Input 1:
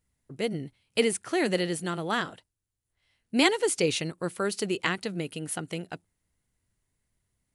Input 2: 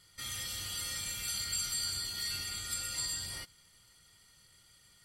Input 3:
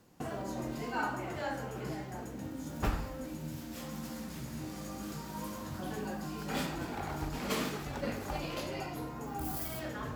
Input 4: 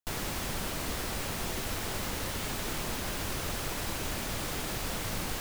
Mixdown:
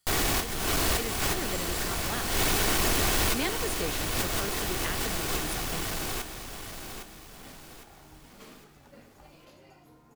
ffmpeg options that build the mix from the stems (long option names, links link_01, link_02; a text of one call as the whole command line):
ffmpeg -i stem1.wav -i stem2.wav -i stem3.wav -i stem4.wav -filter_complex "[0:a]dynaudnorm=framelen=260:gausssize=11:maxgain=11.5dB,volume=-16dB,asplit=2[link_01][link_02];[1:a]highshelf=frequency=5000:gain=11,volume=-17.5dB[link_03];[2:a]adelay=900,volume=-16.5dB[link_04];[3:a]aecho=1:1:2.7:0.4,aeval=exprs='0.1*sin(PI/2*3.55*val(0)/0.1)':channel_layout=same,volume=-2.5dB,asplit=2[link_05][link_06];[link_06]volume=-7dB[link_07];[link_02]apad=whole_len=238665[link_08];[link_05][link_08]sidechaincompress=threshold=-53dB:ratio=4:attack=36:release=118[link_09];[link_07]aecho=0:1:808|1616|2424|3232|4040|4848:1|0.4|0.16|0.064|0.0256|0.0102[link_10];[link_01][link_03][link_04][link_09][link_10]amix=inputs=5:normalize=0" out.wav